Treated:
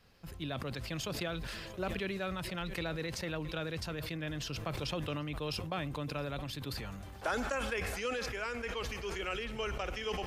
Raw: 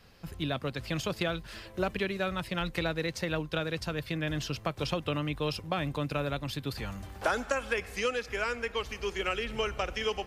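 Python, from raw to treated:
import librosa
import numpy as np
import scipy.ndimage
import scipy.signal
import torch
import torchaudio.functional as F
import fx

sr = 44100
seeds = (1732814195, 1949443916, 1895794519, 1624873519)

y = x + 10.0 ** (-21.5 / 20.0) * np.pad(x, (int(670 * sr / 1000.0), 0))[:len(x)]
y = fx.sustainer(y, sr, db_per_s=24.0)
y = y * 10.0 ** (-7.0 / 20.0)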